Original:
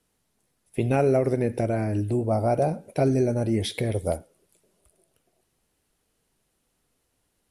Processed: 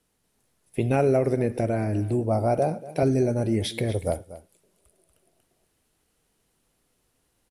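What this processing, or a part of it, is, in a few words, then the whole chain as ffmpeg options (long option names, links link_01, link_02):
ducked delay: -filter_complex "[0:a]asplit=3[link_01][link_02][link_03];[link_02]adelay=237,volume=-2dB[link_04];[link_03]apad=whole_len=341258[link_05];[link_04][link_05]sidechaincompress=threshold=-39dB:ratio=5:attack=31:release=970[link_06];[link_01][link_06]amix=inputs=2:normalize=0,asettb=1/sr,asplit=3[link_07][link_08][link_09];[link_07]atrim=end=2.584[link_10];[link_08]atrim=start=2.58:end=3.03,asetpts=PTS-STARTPTS,afade=type=in:duration=0.004:curve=qsin,afade=type=out:start_time=0.446:duration=0.004:curve=qsin,highpass=140[link_11];[link_09]atrim=start=3.026[link_12];[link_10][link_11]acrossfade=duration=0.004:curve1=hsin:curve2=qsin[link_13];[link_13][link_12]acrossfade=duration=0.004:curve1=qsin:curve2=hsin"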